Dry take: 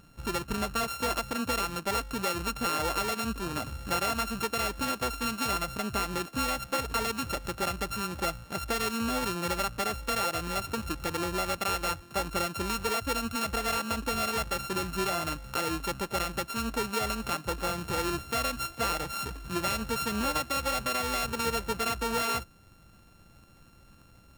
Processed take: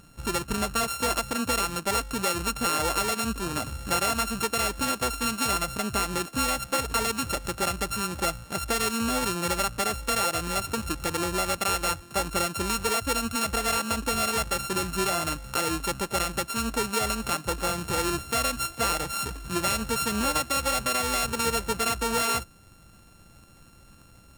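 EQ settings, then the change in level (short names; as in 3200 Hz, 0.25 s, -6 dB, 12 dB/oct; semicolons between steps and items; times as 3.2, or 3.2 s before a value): bell 8700 Hz +6 dB 1 oct; +3.0 dB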